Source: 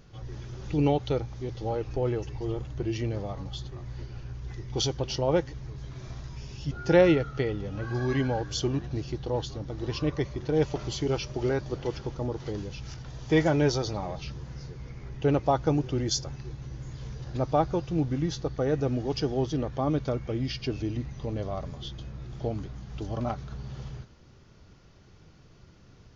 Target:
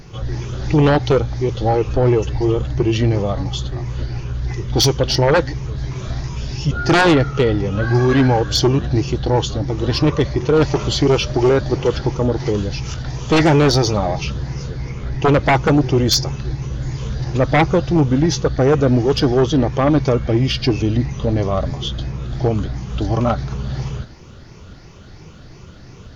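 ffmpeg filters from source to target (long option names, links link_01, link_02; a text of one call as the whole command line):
ffmpeg -i in.wav -af "afftfilt=real='re*pow(10,7/40*sin(2*PI*(0.76*log(max(b,1)*sr/1024/100)/log(2)-(2.9)*(pts-256)/sr)))':imag='im*pow(10,7/40*sin(2*PI*(0.76*log(max(b,1)*sr/1024/100)/log(2)-(2.9)*(pts-256)/sr)))':win_size=1024:overlap=0.75,aeval=exprs='0.355*(cos(1*acos(clip(val(0)/0.355,-1,1)))-cos(1*PI/2))+0.00282*(cos(7*acos(clip(val(0)/0.355,-1,1)))-cos(7*PI/2))':channel_layout=same,aeval=exprs='0.376*sin(PI/2*3.55*val(0)/0.376)':channel_layout=same" out.wav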